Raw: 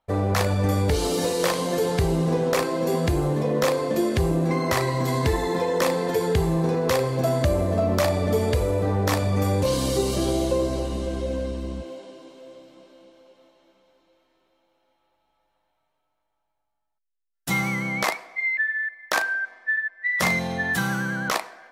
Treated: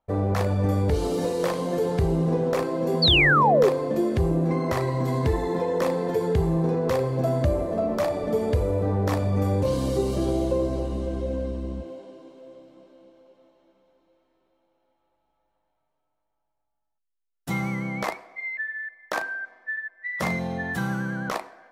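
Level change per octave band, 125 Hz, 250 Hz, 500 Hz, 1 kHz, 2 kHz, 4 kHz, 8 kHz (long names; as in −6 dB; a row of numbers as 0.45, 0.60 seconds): −0.5, −0.5, −1.0, 0.0, −3.0, +3.0, −10.5 decibels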